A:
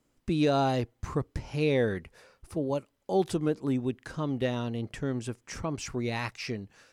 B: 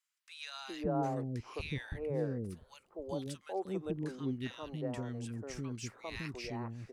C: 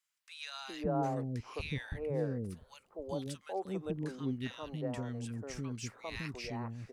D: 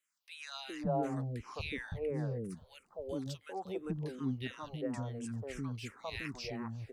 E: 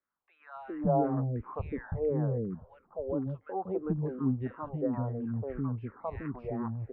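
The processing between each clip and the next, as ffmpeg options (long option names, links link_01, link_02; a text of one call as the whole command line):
ffmpeg -i in.wav -filter_complex "[0:a]acrossover=split=370|1300[link_01][link_02][link_03];[link_02]adelay=400[link_04];[link_01]adelay=560[link_05];[link_05][link_04][link_03]amix=inputs=3:normalize=0,volume=-7dB" out.wav
ffmpeg -i in.wav -af "equalizer=frequency=350:width_type=o:width=0.24:gain=-5.5,volume=1dB" out.wav
ffmpeg -i in.wav -filter_complex "[0:a]asplit=2[link_01][link_02];[link_02]afreqshift=-2.9[link_03];[link_01][link_03]amix=inputs=2:normalize=1,volume=2.5dB" out.wav
ffmpeg -i in.wav -af "lowpass=frequency=1300:width=0.5412,lowpass=frequency=1300:width=1.3066,volume=6.5dB" out.wav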